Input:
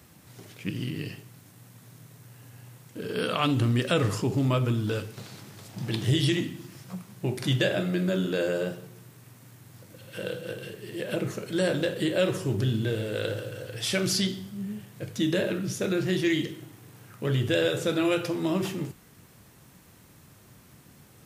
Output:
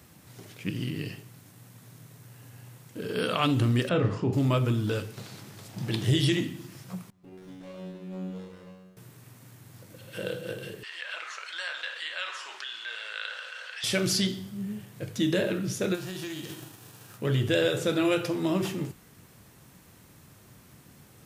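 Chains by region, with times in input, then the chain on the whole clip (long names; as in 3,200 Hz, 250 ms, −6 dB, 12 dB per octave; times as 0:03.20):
0:03.89–0:04.33: head-to-tape spacing loss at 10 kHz 27 dB + double-tracking delay 33 ms −7.5 dB
0:07.10–0:08.97: downward compressor, threshold −25 dBFS + tuned comb filter 93 Hz, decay 0.96 s, mix 100% + windowed peak hold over 17 samples
0:10.83–0:13.84: high-pass filter 1,100 Hz 24 dB per octave + high-frequency loss of the air 130 metres + envelope flattener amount 50%
0:15.94–0:17.17: spectral envelope flattened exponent 0.6 + notch filter 2,100 Hz, Q 6.9 + downward compressor 8 to 1, threshold −33 dBFS
whole clip: no processing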